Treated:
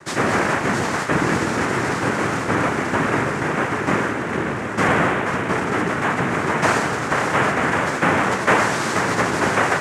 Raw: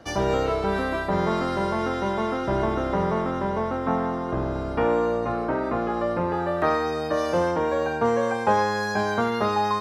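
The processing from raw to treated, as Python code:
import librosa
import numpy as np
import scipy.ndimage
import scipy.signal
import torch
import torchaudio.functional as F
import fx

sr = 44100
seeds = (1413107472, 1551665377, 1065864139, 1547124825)

y = fx.noise_vocoder(x, sr, seeds[0], bands=3)
y = y * 10.0 ** (4.5 / 20.0)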